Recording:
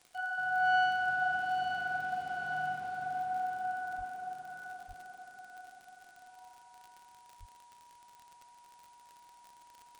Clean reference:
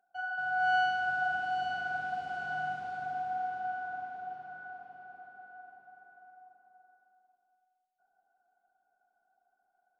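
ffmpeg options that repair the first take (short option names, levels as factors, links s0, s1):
-filter_complex "[0:a]adeclick=t=4,bandreject=f=960:w=30,asplit=3[s0][s1][s2];[s0]afade=t=out:st=3.97:d=0.02[s3];[s1]highpass=f=140:w=0.5412,highpass=f=140:w=1.3066,afade=t=in:st=3.97:d=0.02,afade=t=out:st=4.09:d=0.02[s4];[s2]afade=t=in:st=4.09:d=0.02[s5];[s3][s4][s5]amix=inputs=3:normalize=0,asplit=3[s6][s7][s8];[s6]afade=t=out:st=4.87:d=0.02[s9];[s7]highpass=f=140:w=0.5412,highpass=f=140:w=1.3066,afade=t=in:st=4.87:d=0.02,afade=t=out:st=4.99:d=0.02[s10];[s8]afade=t=in:st=4.99:d=0.02[s11];[s9][s10][s11]amix=inputs=3:normalize=0,asplit=3[s12][s13][s14];[s12]afade=t=out:st=7.39:d=0.02[s15];[s13]highpass=f=140:w=0.5412,highpass=f=140:w=1.3066,afade=t=in:st=7.39:d=0.02,afade=t=out:st=7.51:d=0.02[s16];[s14]afade=t=in:st=7.51:d=0.02[s17];[s15][s16][s17]amix=inputs=3:normalize=0,agate=range=0.0891:threshold=0.00316"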